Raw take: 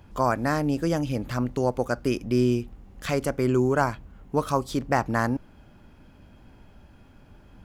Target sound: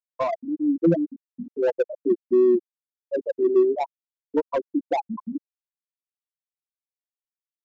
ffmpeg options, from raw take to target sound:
-filter_complex "[0:a]highpass=160,bandreject=f=2300:w=9,afftfilt=real='re*gte(hypot(re,im),0.398)':imag='im*gte(hypot(re,im),0.398)':win_size=1024:overlap=0.75,highshelf=f=3200:g=7.5,aecho=1:1:5.9:0.87,acrossover=split=460|900[s0][s1][s2];[s1]asoftclip=type=hard:threshold=0.0282[s3];[s2]acompressor=threshold=0.00891:ratio=6[s4];[s0][s3][s4]amix=inputs=3:normalize=0,aresample=16000,aresample=44100,volume=1.78"

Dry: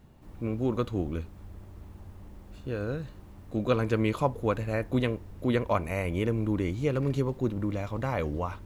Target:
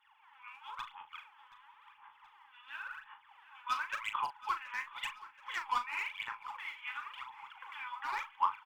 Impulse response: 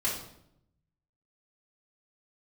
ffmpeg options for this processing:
-filter_complex "[0:a]afftfilt=real='re*between(b*sr/4096,800,3500)':imag='im*between(b*sr/4096,800,3500)':win_size=4096:overlap=0.75,asplit=2[s0][s1];[s1]acompressor=threshold=0.00224:ratio=5,volume=0.708[s2];[s0][s2]amix=inputs=2:normalize=0,volume=22.4,asoftclip=hard,volume=0.0447,aphaser=in_gain=1:out_gain=1:delay=4.1:decay=0.79:speed=0.94:type=sinusoidal,asplit=2[s3][s4];[s4]adelay=38,volume=0.355[s5];[s3][s5]amix=inputs=2:normalize=0,asplit=2[s6][s7];[s7]aecho=0:1:726|1452|2178|2904|3630:0.126|0.0692|0.0381|0.0209|0.0115[s8];[s6][s8]amix=inputs=2:normalize=0,volume=0.562" -ar 48000 -c:a libopus -b:a 256k

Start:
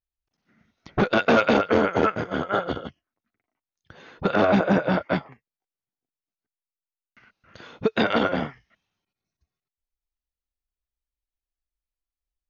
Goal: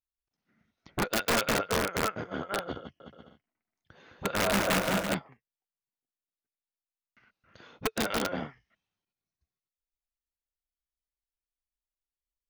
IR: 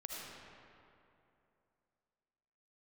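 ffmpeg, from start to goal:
-filter_complex "[0:a]aeval=exprs='(mod(3.76*val(0)+1,2)-1)/3.76':c=same,asettb=1/sr,asplit=3[s0][s1][s2];[s0]atrim=end=2.794[s3];[s1]atrim=start=2.79:end=5.14,asetpts=PTS-STARTPTS,afade=t=in:d=0.004:c=qsin,afade=t=out:st=2.346:d=0.004:c=qsin,aecho=1:1:210|336|411.6|457|484.2:0.631|0.398|0.251|0.158|0.1,atrim=end_sample=103635[s4];[s2]atrim=start=5.136[s5];[s3][s4]acrossfade=d=0.004:c1=hsin:c2=qsin[s6];[s6][s5]acrossfade=d=0.004:c1=qsin:c2=hsin,volume=0.376"

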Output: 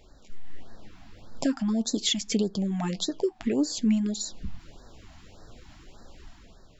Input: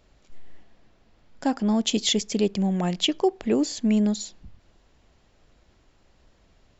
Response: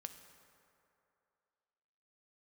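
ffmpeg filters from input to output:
-af "acompressor=threshold=0.0126:ratio=4,flanger=delay=2.3:depth=9:regen=58:speed=0.48:shape=triangular,dynaudnorm=f=100:g=11:m=2.11,afftfilt=real='re*(1-between(b*sr/1024,420*pow(2700/420,0.5+0.5*sin(2*PI*1.7*pts/sr))/1.41,420*pow(2700/420,0.5+0.5*sin(2*PI*1.7*pts/sr))*1.41))':imag='im*(1-between(b*sr/1024,420*pow(2700/420,0.5+0.5*sin(2*PI*1.7*pts/sr))/1.41,420*pow(2700/420,0.5+0.5*sin(2*PI*1.7*pts/sr))*1.41))':win_size=1024:overlap=0.75,volume=2.82"

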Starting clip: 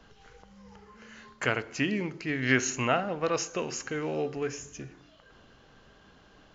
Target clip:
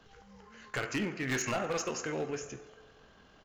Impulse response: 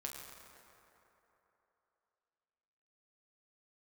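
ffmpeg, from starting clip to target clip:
-filter_complex "[0:a]asplit=2[s0][s1];[1:a]atrim=start_sample=2205,lowshelf=f=380:g=-7[s2];[s1][s2]afir=irnorm=-1:irlink=0,volume=1[s3];[s0][s3]amix=inputs=2:normalize=0,asoftclip=type=hard:threshold=0.0841,atempo=1.9,volume=0.531"

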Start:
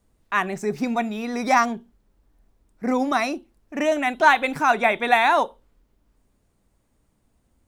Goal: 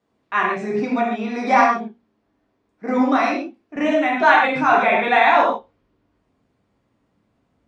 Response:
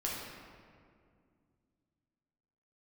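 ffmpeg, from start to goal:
-filter_complex "[0:a]asetnsamples=n=441:p=0,asendcmd='3.76 highpass f 110',highpass=200,lowpass=4000[s0];[1:a]atrim=start_sample=2205,afade=t=out:st=0.2:d=0.01,atrim=end_sample=9261[s1];[s0][s1]afir=irnorm=-1:irlink=0,volume=1.12"

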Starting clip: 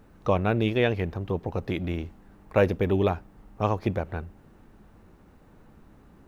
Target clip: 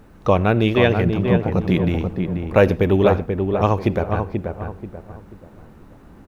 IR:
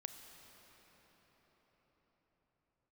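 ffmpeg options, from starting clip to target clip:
-filter_complex "[0:a]asettb=1/sr,asplit=3[s0][s1][s2];[s0]atrim=end=1.054[s3];[s1]atrim=start=1.05:end=1.89,asetpts=PTS-STARTPTS,afade=t=in:d=0.004:c=qsin,afade=t=out:st=0.836:d=0.004:c=qsin,equalizer=f=180:t=o:w=0.42:g=11.5[s4];[s2]atrim=start=1.886[s5];[s3][s4]acrossfade=d=0.004:c1=hsin:c2=qsin[s6];[s6][s5]acrossfade=d=0.004:c1=qsin:c2=hsin,asplit=2[s7][s8];[s8]adelay=485,lowpass=f=1600:p=1,volume=0.562,asplit=2[s9][s10];[s10]adelay=485,lowpass=f=1600:p=1,volume=0.36,asplit=2[s11][s12];[s12]adelay=485,lowpass=f=1600:p=1,volume=0.36,asplit=2[s13][s14];[s14]adelay=485,lowpass=f=1600:p=1,volume=0.36[s15];[s7][s9][s11][s13][s15]amix=inputs=5:normalize=0,asplit=2[s16][s17];[1:a]atrim=start_sample=2205,atrim=end_sample=4410,asetrate=32634,aresample=44100[s18];[s17][s18]afir=irnorm=-1:irlink=0,volume=1[s19];[s16][s19]amix=inputs=2:normalize=0,volume=1.33"

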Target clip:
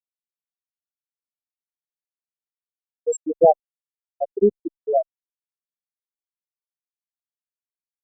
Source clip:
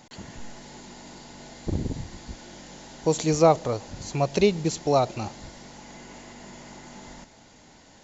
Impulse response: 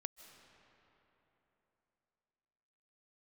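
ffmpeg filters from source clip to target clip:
-af "crystalizer=i=5:c=0,afftfilt=real='re*gte(hypot(re,im),0.794)':imag='im*gte(hypot(re,im),0.794)':win_size=1024:overlap=0.75,volume=1.58" -ar 48000 -c:a libopus -b:a 64k

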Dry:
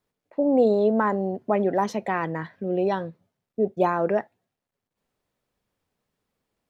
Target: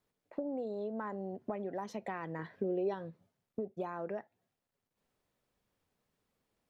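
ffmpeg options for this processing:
-filter_complex "[0:a]acompressor=threshold=0.0224:ratio=10,asettb=1/sr,asplit=3[s0][s1][s2];[s0]atrim=end=2.394[s3];[s1]atrim=start=2.39:end=2.94,asetpts=PTS-STARTPTS,afade=t=in:d=0.004:c=qsin,afade=t=out:st=0.546:d=0.004:c=qsin,equalizer=f=420:t=o:w=0.63:g=8.5[s4];[s2]atrim=start=2.936[s5];[s3][s4]acrossfade=d=0.004:c1=hsin:c2=qsin[s6];[s6][s5]acrossfade=d=0.004:c1=qsin:c2=hsin,volume=0.75"

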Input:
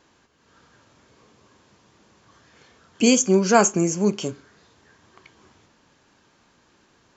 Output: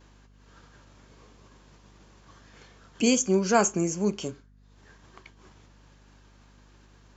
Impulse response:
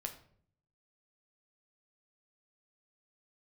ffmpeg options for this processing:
-af "acompressor=mode=upward:threshold=0.0447:ratio=2.5,agate=range=0.0224:threshold=0.0224:ratio=3:detection=peak,aeval=exprs='val(0)+0.00316*(sin(2*PI*50*n/s)+sin(2*PI*2*50*n/s)/2+sin(2*PI*3*50*n/s)/3+sin(2*PI*4*50*n/s)/4+sin(2*PI*5*50*n/s)/5)':c=same,volume=0.531"

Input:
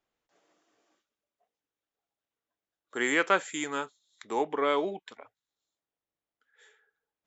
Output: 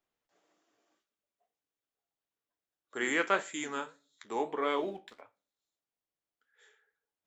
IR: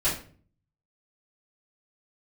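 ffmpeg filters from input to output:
-filter_complex "[0:a]asettb=1/sr,asplit=3[s0][s1][s2];[s0]atrim=end=4.614[s3];[s1]atrim=start=4.61:end=5.21,asetpts=PTS-STARTPTS,afade=t=in:d=0.004:c=qsin,afade=t=out:st=0.596:d=0.004:c=qsin,aeval=exprs='sgn(val(0))*max(abs(val(0))-0.00106,0)':c=same[s4];[s2]atrim=start=5.206[s5];[s3][s4]acrossfade=d=0.004:c1=hsin:c2=qsin[s6];[s6][s5]acrossfade=d=0.004:c1=qsin:c2=hsin,flanger=delay=9.5:depth=8.1:regen=-65:speed=1.7:shape=sinusoidal,asplit=2[s7][s8];[1:a]atrim=start_sample=2205,lowshelf=f=450:g=-7[s9];[s8][s9]afir=irnorm=-1:irlink=0,volume=0.0473[s10];[s7][s10]amix=inputs=2:normalize=0"

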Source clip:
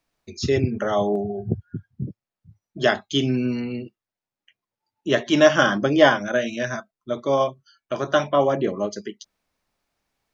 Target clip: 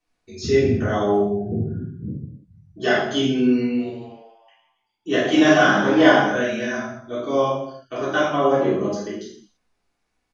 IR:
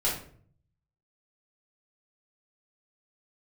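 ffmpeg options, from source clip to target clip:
-filter_complex "[0:a]asplit=3[s0][s1][s2];[s0]afade=t=out:st=3.76:d=0.02[s3];[s1]asplit=7[s4][s5][s6][s7][s8][s9][s10];[s5]adelay=137,afreqshift=110,volume=0.224[s11];[s6]adelay=274,afreqshift=220,volume=0.126[s12];[s7]adelay=411,afreqshift=330,volume=0.07[s13];[s8]adelay=548,afreqshift=440,volume=0.0394[s14];[s9]adelay=685,afreqshift=550,volume=0.0221[s15];[s10]adelay=822,afreqshift=660,volume=0.0123[s16];[s4][s11][s12][s13][s14][s15][s16]amix=inputs=7:normalize=0,afade=t=in:st=3.76:d=0.02,afade=t=out:st=6.17:d=0.02[s17];[s2]afade=t=in:st=6.17:d=0.02[s18];[s3][s17][s18]amix=inputs=3:normalize=0[s19];[1:a]atrim=start_sample=2205,afade=t=out:st=0.23:d=0.01,atrim=end_sample=10584,asetrate=22932,aresample=44100[s20];[s19][s20]afir=irnorm=-1:irlink=0,volume=0.237"

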